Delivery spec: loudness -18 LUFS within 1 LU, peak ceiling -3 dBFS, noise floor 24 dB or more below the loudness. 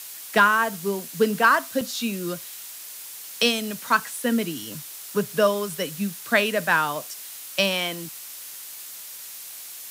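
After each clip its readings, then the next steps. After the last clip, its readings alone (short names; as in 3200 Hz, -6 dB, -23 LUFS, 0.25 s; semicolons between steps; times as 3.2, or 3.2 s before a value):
dropouts 1; longest dropout 3.5 ms; noise floor -39 dBFS; noise floor target -48 dBFS; loudness -23.5 LUFS; peak -5.5 dBFS; loudness target -18.0 LUFS
-> interpolate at 1.81, 3.5 ms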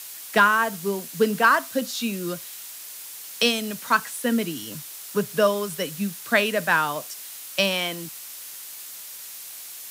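dropouts 0; noise floor -39 dBFS; noise floor target -48 dBFS
-> denoiser 9 dB, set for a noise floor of -39 dBFS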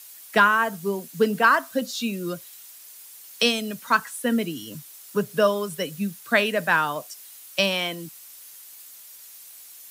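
noise floor -46 dBFS; noise floor target -48 dBFS
-> denoiser 6 dB, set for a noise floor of -46 dBFS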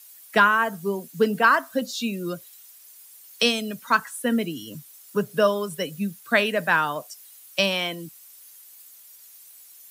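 noise floor -49 dBFS; loudness -23.5 LUFS; peak -6.0 dBFS; loudness target -18.0 LUFS
-> gain +5.5 dB; limiter -3 dBFS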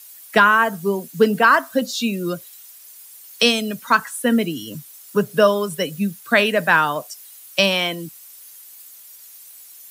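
loudness -18.5 LUFS; peak -3.0 dBFS; noise floor -44 dBFS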